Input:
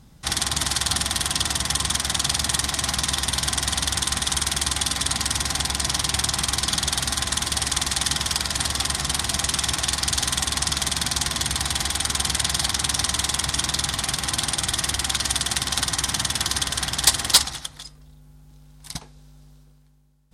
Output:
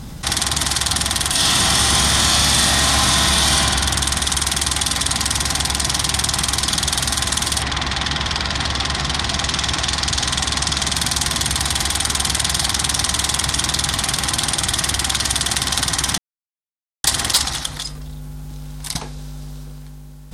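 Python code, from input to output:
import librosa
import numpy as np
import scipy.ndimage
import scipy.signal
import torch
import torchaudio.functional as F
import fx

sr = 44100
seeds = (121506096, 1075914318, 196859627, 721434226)

y = fx.reverb_throw(x, sr, start_s=1.3, length_s=2.24, rt60_s=2.2, drr_db=-9.0)
y = fx.lowpass(y, sr, hz=fx.line((7.61, 3300.0), (10.93, 8400.0)), slope=12, at=(7.61, 10.93), fade=0.02)
y = fx.edit(y, sr, fx.silence(start_s=16.18, length_s=0.86), tone=tone)
y = fx.env_flatten(y, sr, amount_pct=50)
y = y * librosa.db_to_amplitude(-2.0)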